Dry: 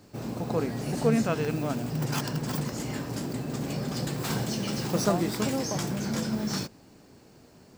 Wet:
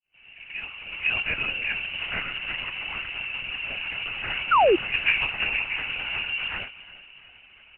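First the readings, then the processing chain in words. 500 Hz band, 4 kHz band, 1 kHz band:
+1.0 dB, +8.0 dB, +8.0 dB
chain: fade in at the beginning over 1.78 s
parametric band 140 Hz −13 dB 0.94 octaves
voice inversion scrambler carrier 3,000 Hz
echo with shifted repeats 351 ms, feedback 50%, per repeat +40 Hz, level −17 dB
linear-prediction vocoder at 8 kHz whisper
sound drawn into the spectrogram fall, 0:04.51–0:04.76, 320–1,500 Hz −21 dBFS
level +4 dB

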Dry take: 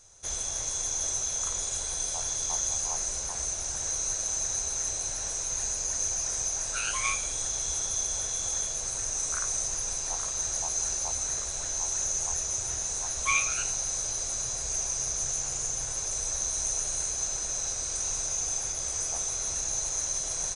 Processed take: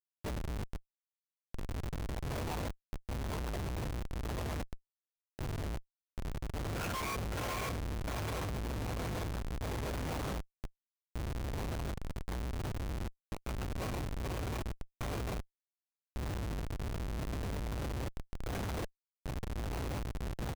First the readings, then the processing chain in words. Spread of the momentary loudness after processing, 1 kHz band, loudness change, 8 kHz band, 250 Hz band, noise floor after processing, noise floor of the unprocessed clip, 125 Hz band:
9 LU, −3.0 dB, −11.5 dB, −28.5 dB, +11.0 dB, below −85 dBFS, −34 dBFS, +8.0 dB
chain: high-pass filter 61 Hz 24 dB per octave
high-shelf EQ 6,600 Hz −8 dB
hum removal 79.98 Hz, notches 29
brickwall limiter −27 dBFS, peak gain reduction 11 dB
all-pass phaser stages 8, 1.1 Hz, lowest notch 170–2,700 Hz
on a send: feedback delay with all-pass diffusion 553 ms, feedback 67%, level −4 dB
on the sum: sample-and-hold tremolo 2.6 Hz, depth 85%
high-frequency loss of the air 280 metres
double-tracking delay 20 ms −4 dB
comparator with hysteresis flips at −44.5 dBFS
level +12.5 dB

